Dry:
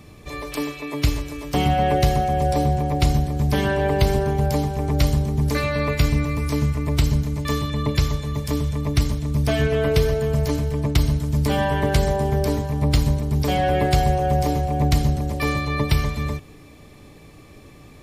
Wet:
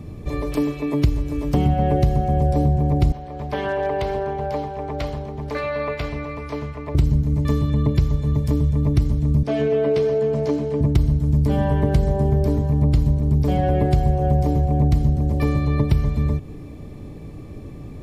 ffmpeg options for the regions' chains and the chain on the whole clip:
-filter_complex "[0:a]asettb=1/sr,asplit=3[s0][s1][s2];[s0]atrim=end=3.124[s3];[s1]atrim=start=3.12:end=6.95,asetpts=PTS-STARTPTS,afade=t=in:d=0.004:c=qsin,afade=t=out:st=3.826:d=0.004:c=qsin,acrossover=split=500 4400:gain=0.0794 1 0.126[s4][s5][s6];[s4][s5][s6]amix=inputs=3:normalize=0,aeval=exprs='0.15*(abs(mod(val(0)/0.15+3,4)-2)-1)':c=same[s7];[s2]atrim=start=6.946[s8];[s3][s7]acrossfade=d=0.004:c1=hsin:c2=qsin[s9];[s9][s8]acrossfade=d=0.004:c1=qsin:c2=hsin,asettb=1/sr,asplit=3[s10][s11][s12];[s10]atrim=end=9.434[s13];[s11]atrim=start=9.43:end=10.81,asetpts=PTS-STARTPTS,afade=t=in:d=0.004:c=qsin,afade=t=out:st=1.376:d=0.004:c=qsin,highpass=340,lowpass=5900,asplit=2[s14][s15];[s15]adelay=14,volume=0.376[s16];[s14][s16]amix=inputs=2:normalize=0,atrim=end_sample=60858[s17];[s12]atrim=start=10.806[s18];[s13][s17]acrossfade=d=0.004:c1=hsin:c2=qsin[s19];[s19][s18]acrossfade=d=0.004:c1=qsin:c2=hsin,tiltshelf=f=720:g=8.5,acompressor=threshold=0.0891:ratio=2.5,volume=1.41"

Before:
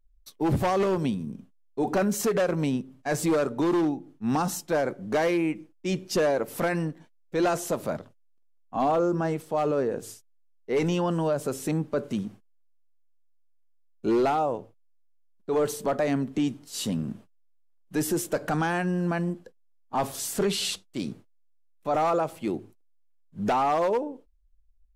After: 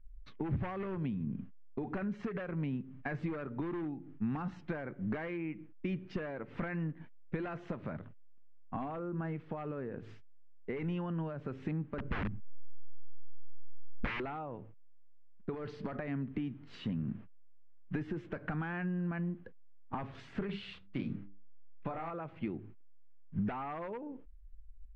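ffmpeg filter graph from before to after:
-filter_complex "[0:a]asettb=1/sr,asplit=3[s0][s1][s2];[s0]atrim=end=11.984[s3];[s1]atrim=start=11.98:end=14.2,asetpts=PTS-STARTPTS,afade=t=in:d=0.004:c=qsin,afade=t=out:st=2.216:d=0.004:c=qsin,aemphasis=mode=reproduction:type=riaa,aeval=exprs='(mod(11.9*val(0)+1,2)-1)/11.9':c=same[s4];[s2]atrim=start=14.196[s5];[s3][s4]acrossfade=d=0.004:c1=hsin:c2=qsin[s6];[s6][s5]acrossfade=d=0.004:c1=qsin:c2=hsin,asettb=1/sr,asplit=3[s7][s8][s9];[s7]atrim=end=15.544[s10];[s8]atrim=start=15.54:end=15.96,asetpts=PTS-STARTPTS,afade=t=in:d=0.004:c=qsin,afade=t=out:st=0.416:d=0.004:c=qsin,equalizer=f=4800:w=2.5:g=12,acompressor=threshold=0.0447:ratio=5:attack=3.2:release=140:knee=1:detection=peak[s11];[s9]atrim=start=15.956[s12];[s10][s11]acrossfade=d=0.004:c1=hsin:c2=qsin[s13];[s13][s12]acrossfade=d=0.004:c1=qsin:c2=hsin,asettb=1/sr,asplit=3[s14][s15][s16];[s14]atrim=end=20.464[s17];[s15]atrim=start=20.46:end=22.1,asetpts=PTS-STARTPTS,afade=t=in:d=0.004:c=qsin,afade=t=out:st=1.636:d=0.004:c=qsin,equalizer=f=9900:t=o:w=0.53:g=9.5,bandreject=f=50:t=h:w=6,bandreject=f=100:t=h:w=6,bandreject=f=150:t=h:w=6,bandreject=f=200:t=h:w=6,bandreject=f=250:t=h:w=6,bandreject=f=300:t=h:w=6,bandreject=f=350:t=h:w=6,bandreject=f=400:t=h:w=6,asplit=2[s18][s19];[s19]adelay=30,volume=0.631[s20];[s18][s20]amix=inputs=2:normalize=0,atrim=end_sample=72324[s21];[s16]atrim=start=22.096[s22];[s17][s21]acrossfade=d=0.004:c1=hsin:c2=qsin[s23];[s23][s22]acrossfade=d=0.004:c1=qsin:c2=hsin,acompressor=threshold=0.0126:ratio=16,lowpass=f=2200:w=0.5412,lowpass=f=2200:w=1.3066,equalizer=f=610:w=0.49:g=-14,volume=3.98"

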